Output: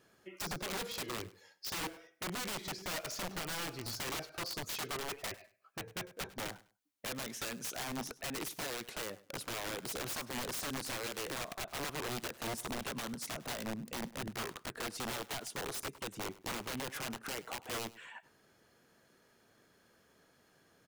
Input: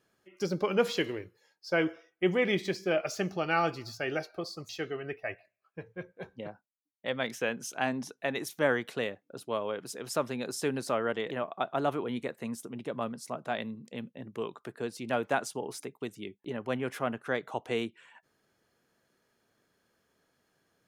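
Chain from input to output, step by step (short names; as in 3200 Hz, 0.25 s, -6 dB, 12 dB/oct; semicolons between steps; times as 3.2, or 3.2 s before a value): compressor 8:1, threshold -39 dBFS, peak gain reduction 18 dB; wrapped overs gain 39.5 dB; feedback echo 0.101 s, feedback 21%, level -19.5 dB; gain +6 dB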